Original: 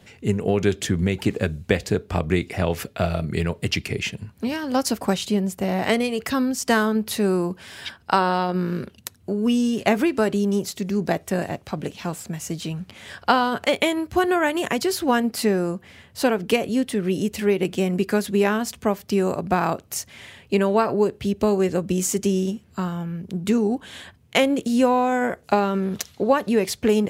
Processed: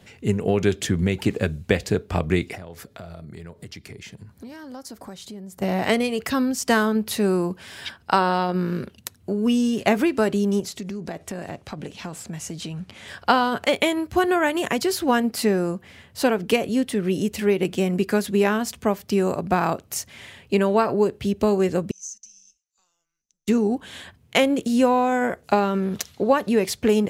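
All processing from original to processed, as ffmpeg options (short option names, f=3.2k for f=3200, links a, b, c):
-filter_complex "[0:a]asettb=1/sr,asplit=3[a][b][c];[a]atrim=end=2.554[d];[b]atrim=start=2.55:end=5.62,asetpts=PTS-STARTPTS,afade=t=in:d=0.004:c=qsin,afade=t=out:st=3.066:d=0.004:c=qsin,equalizer=f=2.7k:w=3.8:g=-8.5,acompressor=threshold=-38dB:ratio=4:attack=3.2:release=140:knee=1:detection=peak[e];[c]atrim=start=5.616[f];[d][e]acrossfade=d=0.004:c1=hsin:c2=qsin[g];[g][f]acrossfade=d=0.004:c1=qsin:c2=hsin,asettb=1/sr,asplit=3[h][i][j];[h]atrim=end=10.604[k];[i]atrim=start=10.6:end=13.08,asetpts=PTS-STARTPTS,afade=t=in:d=0.004:c=qsin,afade=t=out:st=2.476:d=0.004:c=qsin,lowpass=11k,acompressor=threshold=-28dB:ratio=6:attack=3.2:release=140:knee=1:detection=peak[l];[j]atrim=start=13.076[m];[k][l]acrossfade=d=0.004:c1=hsin:c2=qsin[n];[n][m]acrossfade=d=0.004:c1=qsin:c2=hsin,asettb=1/sr,asplit=3[o][p][q];[o]atrim=end=21.914[r];[p]atrim=start=21.91:end=23.48,asetpts=PTS-STARTPTS,afade=t=in:d=0.004:c=qsin,afade=t=out:st=1.566:d=0.004:c=qsin,bandpass=f=6.3k:t=q:w=18,afreqshift=-180[s];[q]atrim=start=23.476[t];[r][s]acrossfade=d=0.004:c1=hsin:c2=qsin[u];[u][t]acrossfade=d=0.004:c1=qsin:c2=hsin"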